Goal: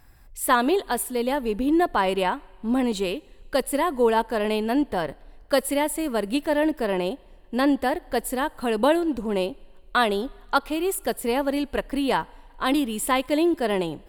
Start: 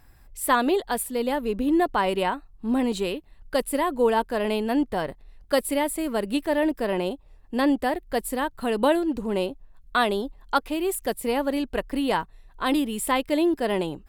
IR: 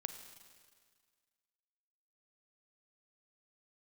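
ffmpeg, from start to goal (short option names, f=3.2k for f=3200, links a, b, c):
-filter_complex "[0:a]asplit=2[a][b];[1:a]atrim=start_sample=2205,lowshelf=f=230:g=-11.5[c];[b][c]afir=irnorm=-1:irlink=0,volume=-13dB[d];[a][d]amix=inputs=2:normalize=0"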